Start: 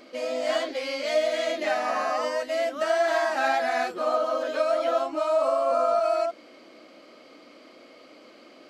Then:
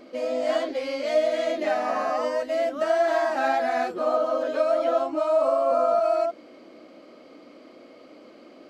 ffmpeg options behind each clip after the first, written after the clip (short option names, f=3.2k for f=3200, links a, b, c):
-af "tiltshelf=f=970:g=5"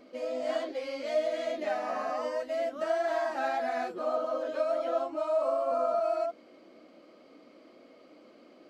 -af "flanger=delay=4:depth=2.3:regen=-62:speed=1.9:shape=triangular,volume=-3dB"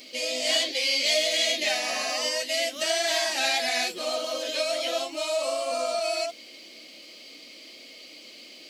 -af "aexciter=amount=14.1:drive=4.7:freq=2.1k"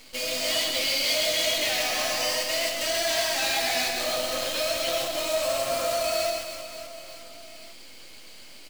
-filter_complex "[0:a]asoftclip=type=tanh:threshold=-23dB,acrusher=bits=6:dc=4:mix=0:aa=0.000001,asplit=2[a][b];[b]aecho=0:1:130|312|566.8|923.5|1423:0.631|0.398|0.251|0.158|0.1[c];[a][c]amix=inputs=2:normalize=0"